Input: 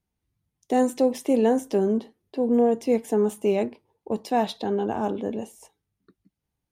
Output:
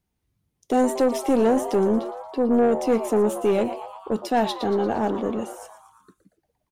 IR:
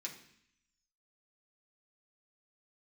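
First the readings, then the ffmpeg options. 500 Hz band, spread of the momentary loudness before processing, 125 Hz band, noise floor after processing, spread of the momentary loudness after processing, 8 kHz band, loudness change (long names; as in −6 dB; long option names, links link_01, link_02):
+2.0 dB, 11 LU, can't be measured, −77 dBFS, 10 LU, +3.5 dB, +1.5 dB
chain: -filter_complex "[0:a]asplit=7[link_01][link_02][link_03][link_04][link_05][link_06][link_07];[link_02]adelay=116,afreqshift=140,volume=-14dB[link_08];[link_03]adelay=232,afreqshift=280,volume=-18.6dB[link_09];[link_04]adelay=348,afreqshift=420,volume=-23.2dB[link_10];[link_05]adelay=464,afreqshift=560,volume=-27.7dB[link_11];[link_06]adelay=580,afreqshift=700,volume=-32.3dB[link_12];[link_07]adelay=696,afreqshift=840,volume=-36.9dB[link_13];[link_01][link_08][link_09][link_10][link_11][link_12][link_13]amix=inputs=7:normalize=0,aeval=exprs='(tanh(7.08*val(0)+0.15)-tanh(0.15))/7.08':channel_layout=same,volume=4dB"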